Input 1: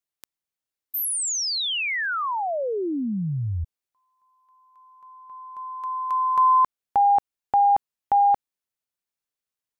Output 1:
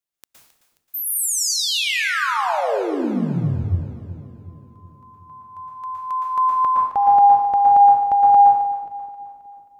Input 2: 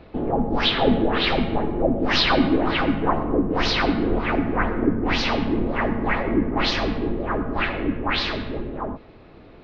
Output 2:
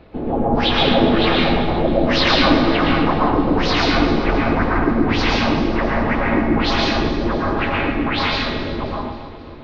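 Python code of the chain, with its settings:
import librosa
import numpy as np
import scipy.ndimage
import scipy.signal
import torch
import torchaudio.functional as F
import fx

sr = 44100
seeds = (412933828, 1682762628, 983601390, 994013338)

y = fx.echo_split(x, sr, split_hz=480.0, low_ms=370, high_ms=266, feedback_pct=52, wet_db=-13)
y = fx.rev_plate(y, sr, seeds[0], rt60_s=0.8, hf_ratio=0.9, predelay_ms=105, drr_db=-3.0)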